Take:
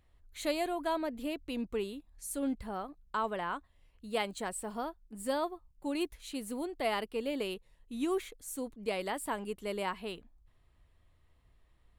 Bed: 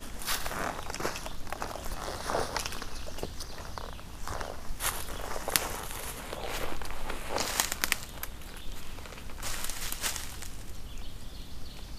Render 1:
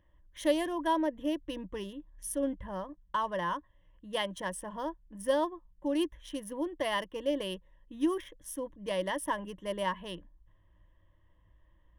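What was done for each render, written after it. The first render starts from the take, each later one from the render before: Wiener smoothing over 9 samples; ripple EQ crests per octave 1.2, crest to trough 14 dB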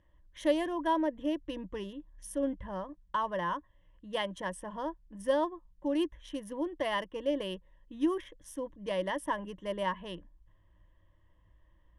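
LPF 7800 Hz 12 dB/oct; dynamic EQ 4700 Hz, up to -4 dB, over -53 dBFS, Q 0.97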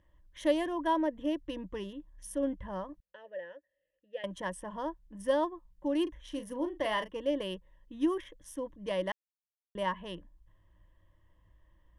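3–4.24 vowel filter e; 6.03–7.17 doubler 37 ms -9 dB; 9.12–9.75 mute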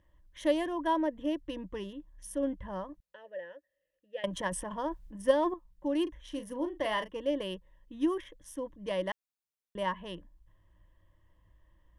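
4.16–5.54 transient shaper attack +5 dB, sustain +10 dB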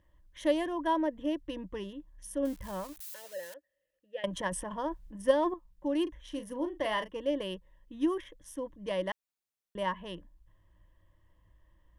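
2.45–3.54 switching spikes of -36.5 dBFS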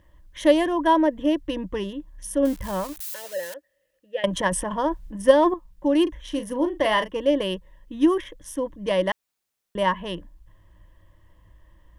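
gain +10.5 dB; limiter -3 dBFS, peak gain reduction 1 dB

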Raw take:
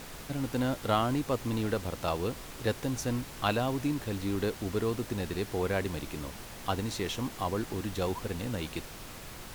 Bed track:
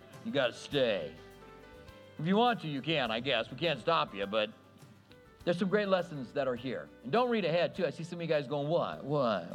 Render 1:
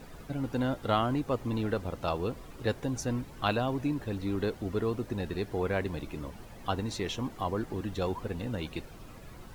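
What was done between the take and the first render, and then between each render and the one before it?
denoiser 12 dB, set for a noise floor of -45 dBFS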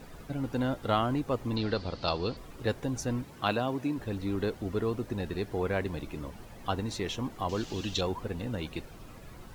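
1.56–2.37 synth low-pass 4500 Hz, resonance Q 7.3; 3.22–3.96 HPF 80 Hz -> 180 Hz; 7.49–8.01 band shelf 4300 Hz +15 dB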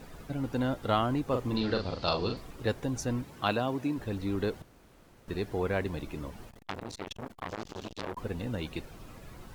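1.26–2.51 doubler 41 ms -5 dB; 4.62–5.28 room tone; 6.49–8.17 core saturation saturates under 2500 Hz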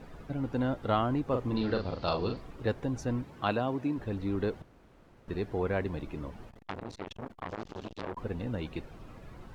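LPF 2200 Hz 6 dB/oct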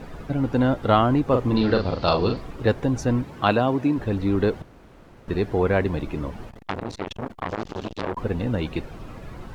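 gain +10 dB

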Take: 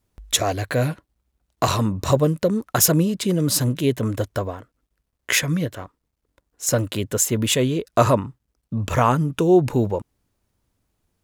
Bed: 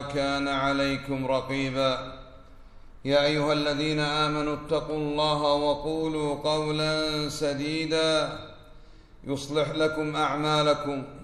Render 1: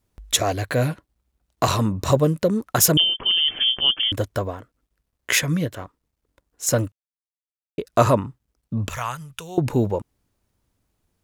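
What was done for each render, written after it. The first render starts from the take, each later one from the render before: 2.97–4.12 inverted band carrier 3300 Hz; 6.92–7.78 mute; 8.9–9.58 passive tone stack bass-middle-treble 10-0-10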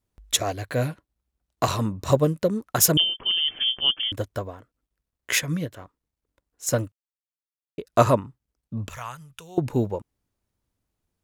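upward expander 1.5:1, over -27 dBFS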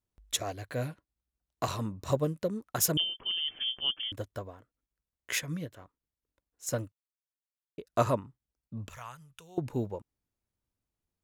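gain -9 dB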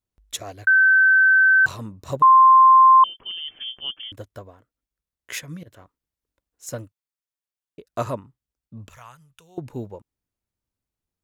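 0.67–1.66 bleep 1540 Hz -11.5 dBFS; 2.22–3.04 bleep 1050 Hz -8 dBFS; 5.63–6.67 negative-ratio compressor -43 dBFS, ratio -0.5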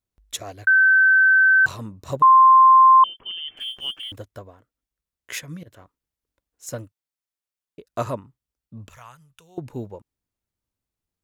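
3.57–4.18 G.711 law mismatch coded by mu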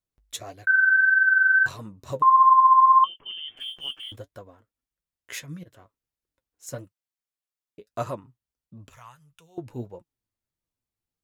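flange 1.6 Hz, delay 5.4 ms, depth 4.5 ms, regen +48%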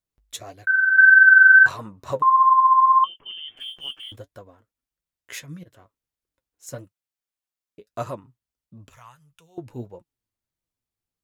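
0.98–2.21 bell 1100 Hz +9 dB 2.4 oct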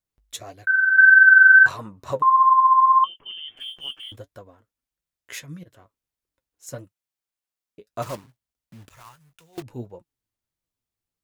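8.02–9.63 block floating point 3-bit

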